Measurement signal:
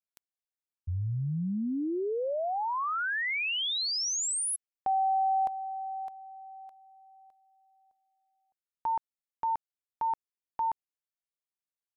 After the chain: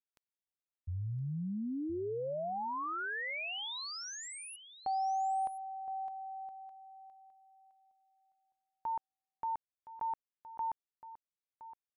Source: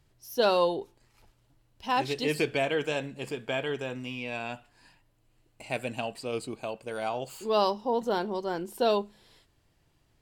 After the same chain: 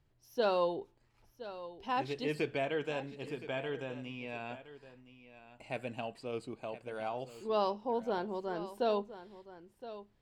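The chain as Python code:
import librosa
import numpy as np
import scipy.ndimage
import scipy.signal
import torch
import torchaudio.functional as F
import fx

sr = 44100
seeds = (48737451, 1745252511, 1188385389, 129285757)

p1 = fx.lowpass(x, sr, hz=2700.0, slope=6)
p2 = p1 + fx.echo_single(p1, sr, ms=1017, db=-14.5, dry=0)
y = F.gain(torch.from_numpy(p2), -6.0).numpy()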